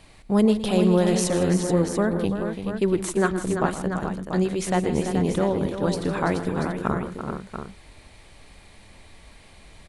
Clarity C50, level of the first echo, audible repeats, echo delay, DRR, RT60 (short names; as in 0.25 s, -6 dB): none, -14.5 dB, 5, 0.116 s, none, none